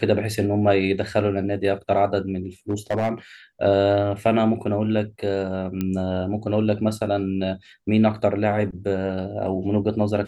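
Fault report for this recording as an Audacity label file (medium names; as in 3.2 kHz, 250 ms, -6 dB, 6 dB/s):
2.700000	3.110000	clipped -17.5 dBFS
5.810000	5.810000	pop -13 dBFS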